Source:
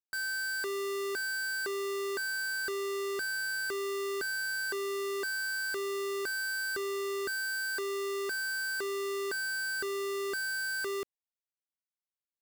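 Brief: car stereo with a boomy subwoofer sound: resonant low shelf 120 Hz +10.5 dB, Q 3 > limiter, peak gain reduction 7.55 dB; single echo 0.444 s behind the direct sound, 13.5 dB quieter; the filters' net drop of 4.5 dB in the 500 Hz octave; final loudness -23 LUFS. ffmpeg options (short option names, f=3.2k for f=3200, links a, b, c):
-af "lowshelf=f=120:t=q:w=3:g=10.5,equalizer=f=500:t=o:g=-5,aecho=1:1:444:0.211,volume=17dB,alimiter=limit=-20.5dB:level=0:latency=1"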